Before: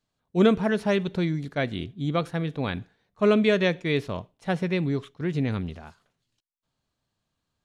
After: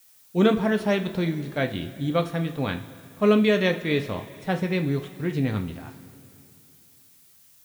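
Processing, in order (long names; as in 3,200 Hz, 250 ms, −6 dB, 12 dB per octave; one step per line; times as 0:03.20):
background noise blue −57 dBFS
coupled-rooms reverb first 0.28 s, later 2.9 s, from −18 dB, DRR 4.5 dB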